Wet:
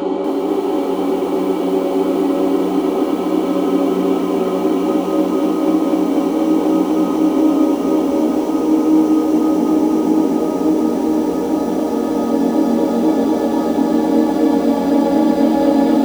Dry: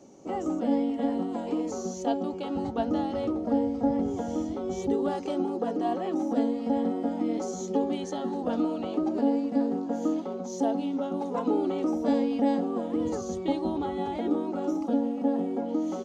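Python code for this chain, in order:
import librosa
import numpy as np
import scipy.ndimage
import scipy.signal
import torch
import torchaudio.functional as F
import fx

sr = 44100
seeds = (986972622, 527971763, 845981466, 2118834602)

y = x + 10.0 ** (-9.0 / 20.0) * np.pad(x, (int(370 * sr / 1000.0), 0))[:len(x)]
y = fx.paulstretch(y, sr, seeds[0], factor=41.0, window_s=0.5, from_s=11.68)
y = fx.echo_crushed(y, sr, ms=244, feedback_pct=80, bits=8, wet_db=-4)
y = y * 10.0 ** (8.5 / 20.0)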